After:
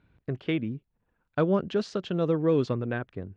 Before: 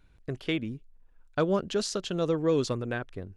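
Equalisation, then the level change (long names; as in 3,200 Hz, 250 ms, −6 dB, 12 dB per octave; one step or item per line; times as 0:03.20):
band-pass filter 120–2,900 Hz
low-shelf EQ 180 Hz +9 dB
0.0 dB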